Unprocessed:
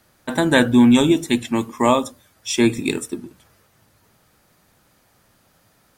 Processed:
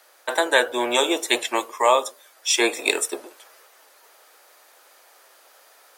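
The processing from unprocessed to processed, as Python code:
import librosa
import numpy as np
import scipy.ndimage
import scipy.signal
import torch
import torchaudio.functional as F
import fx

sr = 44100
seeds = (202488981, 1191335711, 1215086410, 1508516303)

y = fx.octave_divider(x, sr, octaves=1, level_db=3.0)
y = scipy.signal.sosfilt(scipy.signal.cheby2(4, 50, 180.0, 'highpass', fs=sr, output='sos'), y)
y = fx.rider(y, sr, range_db=5, speed_s=0.5)
y = y * 10.0 ** (2.5 / 20.0)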